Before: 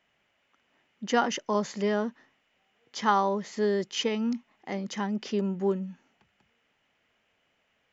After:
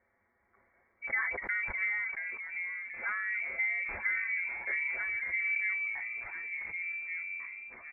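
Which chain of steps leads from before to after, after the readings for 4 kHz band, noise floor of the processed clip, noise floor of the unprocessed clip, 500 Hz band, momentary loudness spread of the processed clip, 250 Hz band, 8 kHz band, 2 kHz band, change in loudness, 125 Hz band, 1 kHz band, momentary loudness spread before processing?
under -40 dB, -74 dBFS, -73 dBFS, -24.0 dB, 7 LU, under -30 dB, n/a, +10.0 dB, -3.5 dB, under -20 dB, -16.5 dB, 10 LU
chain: self-modulated delay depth 0.064 ms; elliptic high-pass 190 Hz; comb 6.6 ms, depth 100%; compressor 6:1, threshold -28 dBFS, peak gain reduction 11 dB; treble ducked by the level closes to 1000 Hz, closed at -31.5 dBFS; echoes that change speed 0.396 s, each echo -3 st, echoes 3, each echo -6 dB; air absorption 240 m; inverted band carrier 2500 Hz; sustainer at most 34 dB/s; gain -1.5 dB

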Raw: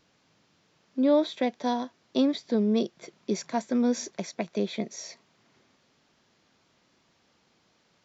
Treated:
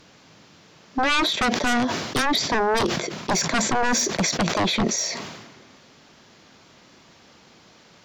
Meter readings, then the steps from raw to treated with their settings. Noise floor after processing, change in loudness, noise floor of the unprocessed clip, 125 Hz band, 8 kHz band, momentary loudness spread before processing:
-53 dBFS, +6.0 dB, -68 dBFS, +9.5 dB, n/a, 13 LU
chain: sine folder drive 16 dB, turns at -12 dBFS; sustainer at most 46 dB/s; gain -5 dB

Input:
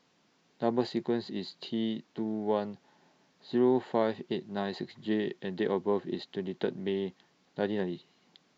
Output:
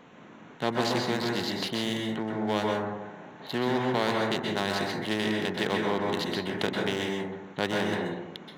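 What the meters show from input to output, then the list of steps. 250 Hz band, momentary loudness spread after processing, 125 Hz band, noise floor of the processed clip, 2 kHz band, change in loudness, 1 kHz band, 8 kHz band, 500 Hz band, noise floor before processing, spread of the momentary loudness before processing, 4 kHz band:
+2.0 dB, 8 LU, +6.0 dB, -49 dBFS, +12.5 dB, +3.5 dB, +7.5 dB, n/a, +1.5 dB, -69 dBFS, 11 LU, +12.0 dB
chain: Wiener smoothing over 9 samples; plate-style reverb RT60 0.66 s, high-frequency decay 0.35×, pre-delay 0.115 s, DRR 0 dB; spectral compressor 2:1

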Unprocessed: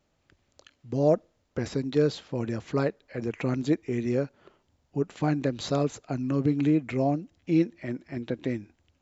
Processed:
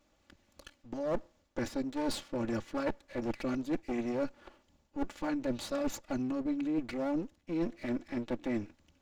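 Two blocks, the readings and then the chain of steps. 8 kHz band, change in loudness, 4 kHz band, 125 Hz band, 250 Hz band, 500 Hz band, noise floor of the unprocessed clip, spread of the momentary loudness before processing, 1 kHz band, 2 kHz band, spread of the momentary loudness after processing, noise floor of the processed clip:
n/a, -7.5 dB, -4.0 dB, -15.5 dB, -6.0 dB, -8.5 dB, -73 dBFS, 10 LU, -5.0 dB, -4.5 dB, 6 LU, -72 dBFS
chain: minimum comb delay 3.5 ms; reverse; compressor 12:1, threshold -33 dBFS, peak gain reduction 16.5 dB; reverse; gain +3 dB

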